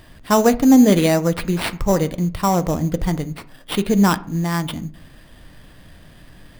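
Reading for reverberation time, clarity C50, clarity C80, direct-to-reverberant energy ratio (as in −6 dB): 0.50 s, 18.5 dB, 22.5 dB, 12.0 dB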